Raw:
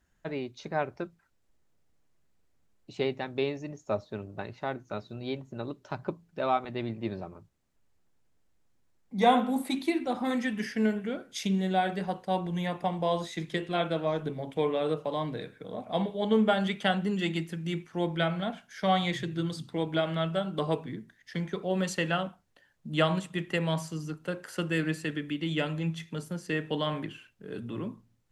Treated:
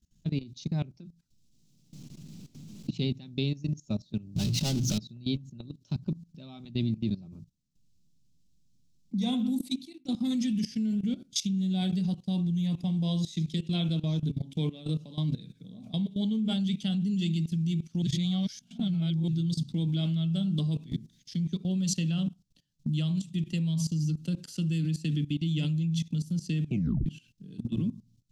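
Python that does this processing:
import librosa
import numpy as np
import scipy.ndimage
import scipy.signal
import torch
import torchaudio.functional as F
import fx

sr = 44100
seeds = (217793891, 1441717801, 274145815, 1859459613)

y = fx.band_squash(x, sr, depth_pct=100, at=(0.82, 2.99))
y = fx.power_curve(y, sr, exponent=0.35, at=(4.36, 4.98))
y = fx.low_shelf(y, sr, hz=200.0, db=-3.5, at=(13.52, 15.4))
y = fx.spec_clip(y, sr, under_db=12, at=(20.79, 21.33), fade=0.02)
y = fx.edit(y, sr, fx.fade_out_span(start_s=9.43, length_s=0.62),
    fx.reverse_span(start_s=18.02, length_s=1.26),
    fx.tape_stop(start_s=26.65, length_s=0.41), tone=tone)
y = fx.curve_eq(y, sr, hz=(100.0, 150.0, 250.0, 450.0, 890.0, 1800.0, 2600.0, 3900.0, 5600.0, 9700.0), db=(0, 8, 1, -17, -22, -24, -8, 1, 4, -4))
y = fx.level_steps(y, sr, step_db=18)
y = F.gain(torch.from_numpy(y), 8.5).numpy()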